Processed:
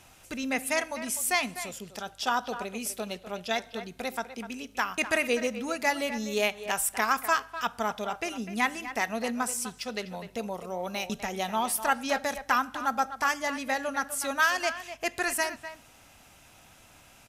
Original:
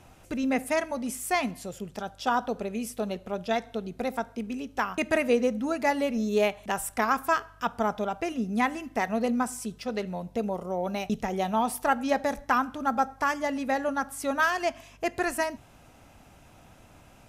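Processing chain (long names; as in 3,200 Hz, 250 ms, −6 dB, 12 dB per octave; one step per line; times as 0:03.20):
tilt shelving filter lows −6.5 dB, about 1,300 Hz
far-end echo of a speakerphone 250 ms, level −11 dB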